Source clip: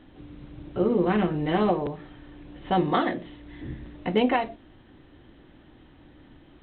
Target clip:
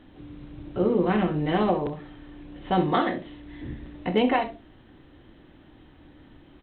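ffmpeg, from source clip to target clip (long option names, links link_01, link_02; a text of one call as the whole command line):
ffmpeg -i in.wav -af "aecho=1:1:27|65:0.251|0.211" out.wav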